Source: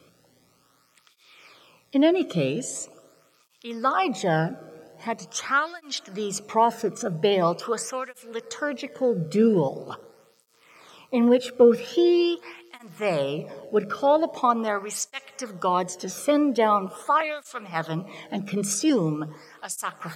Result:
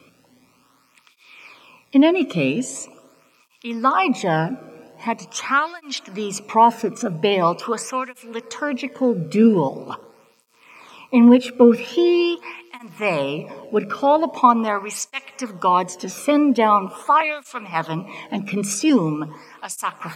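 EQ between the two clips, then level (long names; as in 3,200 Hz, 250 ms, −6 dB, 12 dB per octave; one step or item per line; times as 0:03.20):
thirty-one-band graphic EQ 250 Hz +10 dB, 1,000 Hz +10 dB, 2,500 Hz +10 dB
+1.5 dB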